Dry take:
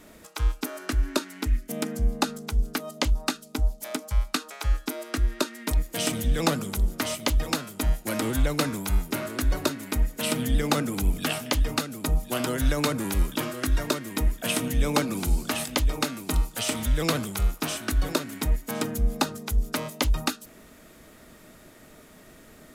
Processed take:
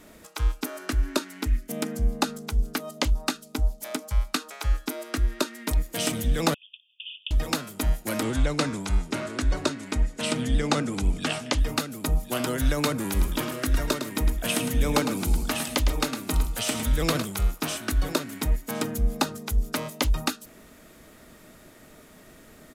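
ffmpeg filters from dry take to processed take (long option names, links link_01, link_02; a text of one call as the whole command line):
ffmpeg -i in.wav -filter_complex "[0:a]asettb=1/sr,asplit=3[link_01][link_02][link_03];[link_01]atrim=end=6.544[link_04];[link_02]atrim=start=6.54:end=7.31,asetpts=PTS-STARTPTS,afade=type=in:duration=0.004:curve=qsin,afade=type=out:start_time=0.766:duration=0.004:curve=qsin,asuperpass=centerf=3000:order=20:qfactor=2.9[link_05];[link_03]atrim=start=7.306[link_06];[link_04][link_05]acrossfade=duration=0.004:curve1=hsin:curve2=qsin[link_07];[link_07][link_06]acrossfade=duration=0.004:curve1=qsin:curve2=hsin,asettb=1/sr,asplit=3[link_08][link_09][link_10];[link_08]atrim=end=8.234[link_11];[link_09]atrim=start=8.23:end=11.58,asetpts=PTS-STARTPTS,afade=type=in:duration=0.004:curve=qsin,afade=type=out:start_time=3.346:duration=0.004:curve=qsin,lowpass=frequency=8800:width=0.5412,lowpass=frequency=8800:width=1.3066[link_12];[link_10]atrim=start=11.576[link_13];[link_11][link_12]acrossfade=duration=0.004:curve1=hsin:curve2=qsin[link_14];[link_14][link_13]acrossfade=duration=0.004:curve1=qsin:curve2=hsin,asplit=3[link_15][link_16][link_17];[link_15]afade=type=out:start_time=13.15:duration=0.02[link_18];[link_16]aecho=1:1:107:0.376,afade=type=in:start_time=13.15:duration=0.02,afade=type=out:start_time=17.22:duration=0.02[link_19];[link_17]afade=type=in:start_time=17.22:duration=0.02[link_20];[link_18][link_19][link_20]amix=inputs=3:normalize=0" out.wav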